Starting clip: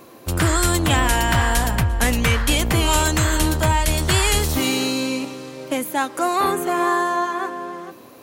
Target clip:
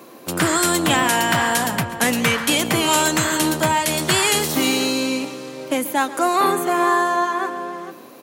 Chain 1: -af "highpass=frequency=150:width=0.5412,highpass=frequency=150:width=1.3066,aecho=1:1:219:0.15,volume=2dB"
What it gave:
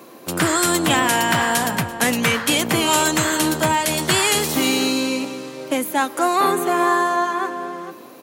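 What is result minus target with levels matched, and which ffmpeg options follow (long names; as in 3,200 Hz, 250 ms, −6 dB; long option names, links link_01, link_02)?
echo 83 ms late
-af "highpass=frequency=150:width=0.5412,highpass=frequency=150:width=1.3066,aecho=1:1:136:0.15,volume=2dB"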